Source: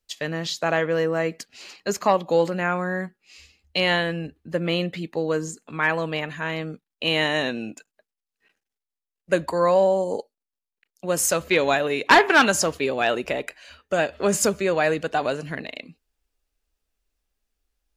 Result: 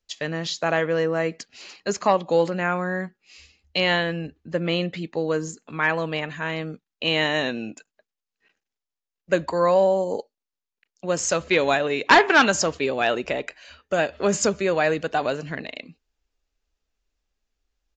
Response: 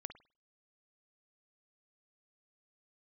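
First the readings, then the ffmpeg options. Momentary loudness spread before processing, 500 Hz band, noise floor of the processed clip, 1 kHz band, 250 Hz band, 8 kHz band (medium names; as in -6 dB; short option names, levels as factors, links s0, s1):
14 LU, 0.0 dB, under -85 dBFS, 0.0 dB, 0.0 dB, -2.0 dB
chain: -af "aresample=16000,aresample=44100"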